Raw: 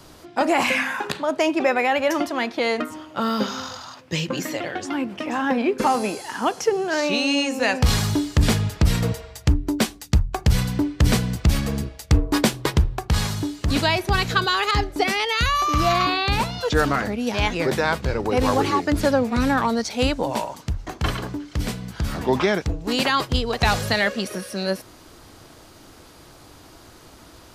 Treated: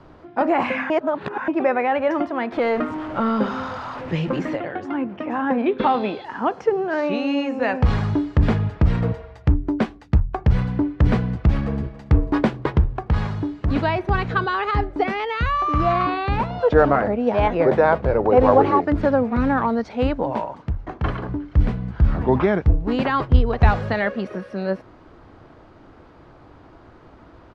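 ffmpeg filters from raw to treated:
ffmpeg -i in.wav -filter_complex "[0:a]asettb=1/sr,asplit=3[link_01][link_02][link_03];[link_01]atrim=end=2.524[link_04];[link_02]atrim=start=2.52:end=4.56,asetpts=PTS-STARTPTS,afade=type=in:duration=0.004:curve=qsin,afade=type=out:start_time=2.036:duration=0.004:curve=qsin,aeval=exprs='val(0)+0.5*0.0473*sgn(val(0))':channel_layout=same[link_05];[link_03]atrim=start=4.556[link_06];[link_04][link_05]acrossfade=duration=0.004:curve1=hsin:curve2=qsin[link_07];[link_07][link_06]acrossfade=duration=0.004:curve1=qsin:curve2=hsin,asettb=1/sr,asplit=3[link_08][link_09][link_10];[link_08]atrim=end=5.664[link_11];[link_09]atrim=start=5.66:end=6.25,asetpts=PTS-STARTPTS,afade=type=in:duration=0.004:curve=qsin,afade=type=out:start_time=0.586:duration=0.004:curve=qsin,lowpass=frequency=3600:width_type=q:width=11[link_12];[link_10]atrim=start=6.246[link_13];[link_11][link_12]acrossfade=duration=0.004:curve1=hsin:curve2=qsin[link_14];[link_14][link_13]acrossfade=duration=0.004:curve1=qsin:curve2=hsin,asplit=2[link_15][link_16];[link_16]afade=type=in:start_time=11.55:duration=0.01,afade=type=out:start_time=12.04:duration=0.01,aecho=0:1:280|560|840|1120|1400|1680|1960|2240|2520|2800|3080|3360:0.141254|0.113003|0.0904024|0.0723219|0.0578575|0.046286|0.0370288|0.0296231|0.0236984|0.0189588|0.015167|0.0121336[link_17];[link_15][link_17]amix=inputs=2:normalize=0,asettb=1/sr,asplit=3[link_18][link_19][link_20];[link_18]atrim=end=16.504[link_21];[link_19]atrim=start=16.5:end=18.85,asetpts=PTS-STARTPTS,afade=type=in:duration=0.004:curve=qsin,afade=type=out:start_time=2.346:duration=0.004:curve=qsin,equalizer=frequency=610:width_type=o:width=1.1:gain=9[link_22];[link_20]atrim=start=18.846[link_23];[link_21][link_22]acrossfade=duration=0.004:curve1=hsin:curve2=qsin[link_24];[link_24][link_23]acrossfade=duration=0.004:curve1=qsin:curve2=hsin,asettb=1/sr,asplit=3[link_25][link_26][link_27];[link_25]atrim=end=21.294[link_28];[link_26]atrim=start=21.29:end=23.71,asetpts=PTS-STARTPTS,afade=type=in:duration=0.004:curve=qsin,afade=type=out:start_time=2.416:duration=0.004:curve=qsin,lowshelf=frequency=110:gain=12[link_29];[link_27]atrim=start=23.706[link_30];[link_28][link_29]acrossfade=duration=0.004:curve1=hsin:curve2=qsin[link_31];[link_31][link_30]acrossfade=duration=0.004:curve1=qsin:curve2=hsin,asplit=3[link_32][link_33][link_34];[link_32]atrim=end=0.902[link_35];[link_33]atrim=start=0.898:end=1.482,asetpts=PTS-STARTPTS,areverse[link_36];[link_34]atrim=start=1.478[link_37];[link_35][link_36]acrossfade=duration=0.004:curve1=hsin:curve2=hsin[link_38];[link_38][link_37]acrossfade=duration=0.004:curve1=hsin:curve2=hsin,lowpass=1600,volume=1dB" out.wav

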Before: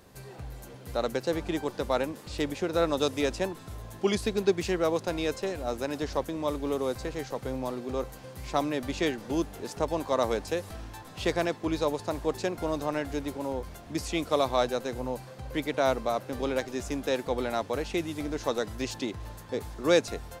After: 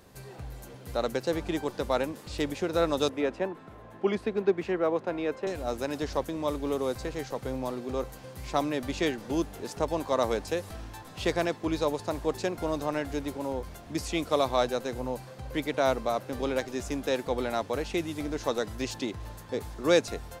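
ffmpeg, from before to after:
ffmpeg -i in.wav -filter_complex "[0:a]asettb=1/sr,asplit=3[link_01][link_02][link_03];[link_01]atrim=end=3.094[link_04];[link_02]atrim=start=3.09:end=5.47,asetpts=PTS-STARTPTS,afade=type=in:duration=0.004:curve=qsin,afade=type=out:start_time=2.376:duration=0.004:curve=qsin,acrossover=split=160 2600:gain=0.2 1 0.112[link_05][link_06][link_07];[link_05][link_06][link_07]amix=inputs=3:normalize=0[link_08];[link_03]atrim=start=5.466[link_09];[link_04][link_08]acrossfade=duration=0.004:curve1=hsin:curve2=qsin[link_10];[link_10][link_09]acrossfade=duration=0.004:curve1=qsin:curve2=hsin" out.wav

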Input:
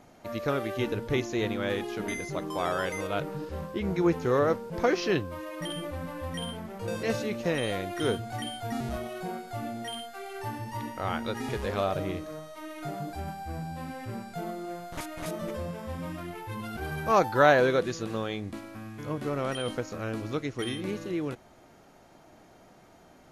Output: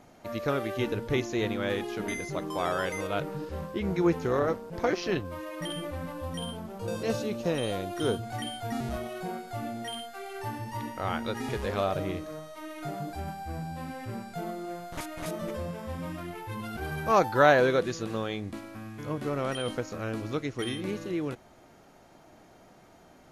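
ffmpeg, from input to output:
ffmpeg -i in.wav -filter_complex "[0:a]asplit=3[link_01][link_02][link_03];[link_01]afade=type=out:start_time=4.26:duration=0.02[link_04];[link_02]tremolo=f=180:d=0.571,afade=type=in:start_time=4.26:duration=0.02,afade=type=out:start_time=5.24:duration=0.02[link_05];[link_03]afade=type=in:start_time=5.24:duration=0.02[link_06];[link_04][link_05][link_06]amix=inputs=3:normalize=0,asettb=1/sr,asplit=3[link_07][link_08][link_09];[link_07]atrim=end=6.124[link_10];[link_08]atrim=start=6.12:end=8.23,asetpts=PTS-STARTPTS,afade=type=in:duration=0.004:curve=qsin,afade=type=out:start_time=2.106:duration=0.004:curve=qsin,equalizer=frequency=2000:width_type=o:width=0.59:gain=-8.5[link_11];[link_09]atrim=start=8.226[link_12];[link_10][link_11]acrossfade=duration=0.004:curve1=hsin:curve2=qsin[link_13];[link_13][link_12]acrossfade=duration=0.004:curve1=qsin:curve2=hsin" out.wav

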